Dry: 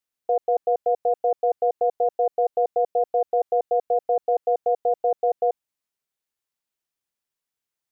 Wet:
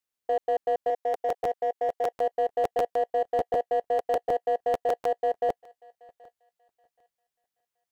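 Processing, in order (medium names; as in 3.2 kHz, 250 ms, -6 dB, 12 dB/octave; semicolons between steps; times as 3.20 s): 0.90–2.10 s: high-pass 470 Hz 6 dB/octave; in parallel at -4 dB: hard clipper -23.5 dBFS, distortion -9 dB; on the sum: thinning echo 777 ms, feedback 31%, high-pass 910 Hz, level -22 dB; crackling interface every 0.15 s, samples 512, repeat, from 0.98 s; trim -6.5 dB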